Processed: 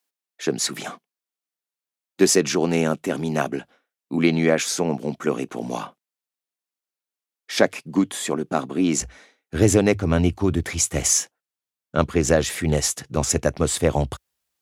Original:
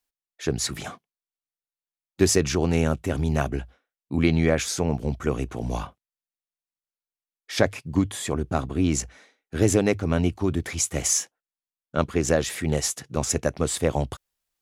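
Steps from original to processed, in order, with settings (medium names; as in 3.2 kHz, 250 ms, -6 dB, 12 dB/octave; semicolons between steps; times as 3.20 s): high-pass 180 Hz 24 dB/octave, from 9.01 s 54 Hz; trim +3.5 dB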